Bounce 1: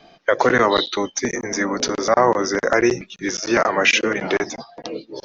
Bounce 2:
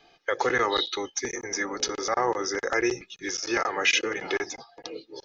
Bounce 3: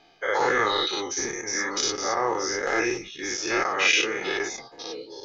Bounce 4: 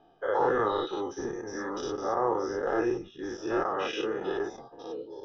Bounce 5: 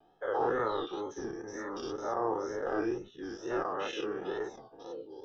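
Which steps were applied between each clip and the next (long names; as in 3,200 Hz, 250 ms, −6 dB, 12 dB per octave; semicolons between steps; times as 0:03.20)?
tilt shelving filter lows −3.5 dB, about 1,400 Hz; comb filter 2.4 ms, depth 54%; level −8.5 dB
every bin's largest magnitude spread in time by 120 ms; flanger 1.1 Hz, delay 4.6 ms, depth 9.9 ms, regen −50%
moving average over 20 samples
tape wow and flutter 99 cents; level −4.5 dB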